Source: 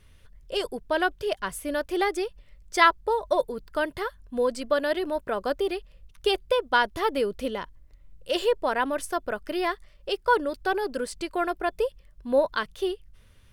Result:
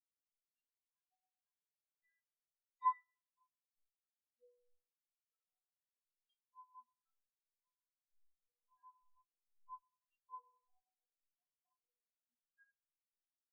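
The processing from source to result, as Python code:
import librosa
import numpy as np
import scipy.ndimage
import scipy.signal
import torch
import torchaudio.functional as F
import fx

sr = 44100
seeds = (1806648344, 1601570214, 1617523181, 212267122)

y = fx.peak_eq(x, sr, hz=370.0, db=-14.0, octaves=2.1)
y = fx.transient(y, sr, attack_db=5, sustain_db=-6)
y = fx.env_flanger(y, sr, rest_ms=3.4, full_db=-19.0)
y = fx.stiff_resonator(y, sr, f0_hz=240.0, decay_s=0.54, stiffness=0.008)
y = fx.echo_feedback(y, sr, ms=77, feedback_pct=43, wet_db=-12)
y = fx.rev_fdn(y, sr, rt60_s=2.1, lf_ratio=1.0, hf_ratio=0.3, size_ms=14.0, drr_db=-4.5)
y = fx.spectral_expand(y, sr, expansion=4.0)
y = F.gain(torch.from_numpy(y), -3.0).numpy()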